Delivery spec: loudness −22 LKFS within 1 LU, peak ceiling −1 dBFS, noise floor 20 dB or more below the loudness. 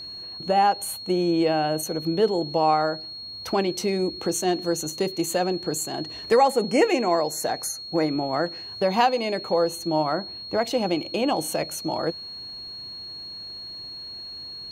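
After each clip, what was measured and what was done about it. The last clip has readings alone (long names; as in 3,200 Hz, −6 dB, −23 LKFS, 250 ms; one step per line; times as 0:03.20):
crackle rate 27 per second; interfering tone 4,300 Hz; level of the tone −35 dBFS; integrated loudness −25.0 LKFS; sample peak −8.5 dBFS; target loudness −22.0 LKFS
→ click removal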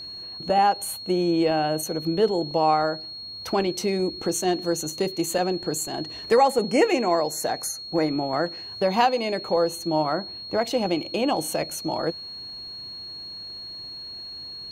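crackle rate 0.068 per second; interfering tone 4,300 Hz; level of the tone −35 dBFS
→ notch filter 4,300 Hz, Q 30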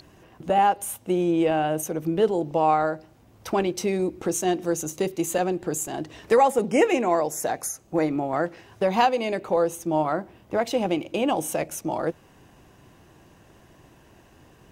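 interfering tone none found; integrated loudness −24.5 LKFS; sample peak −8.5 dBFS; target loudness −22.0 LKFS
→ level +2.5 dB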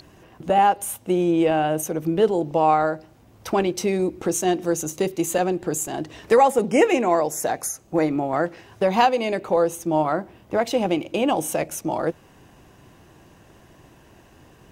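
integrated loudness −22.0 LKFS; sample peak −6.0 dBFS; background noise floor −52 dBFS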